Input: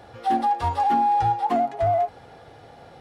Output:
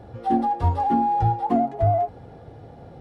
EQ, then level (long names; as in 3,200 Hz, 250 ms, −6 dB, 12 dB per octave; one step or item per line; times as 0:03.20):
tilt shelving filter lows +9.5 dB, about 650 Hz
0.0 dB